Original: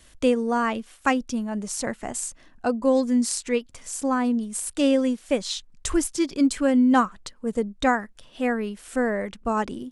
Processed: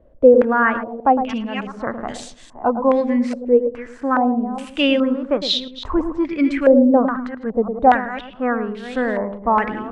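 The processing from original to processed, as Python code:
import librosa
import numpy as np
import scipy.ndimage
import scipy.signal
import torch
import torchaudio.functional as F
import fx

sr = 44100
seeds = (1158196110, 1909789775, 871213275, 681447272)

y = fx.reverse_delay(x, sr, ms=334, wet_db=-12)
y = fx.echo_filtered(y, sr, ms=109, feedback_pct=29, hz=900.0, wet_db=-7)
y = fx.filter_held_lowpass(y, sr, hz=2.4, low_hz=560.0, high_hz=3700.0)
y = y * 10.0 ** (2.0 / 20.0)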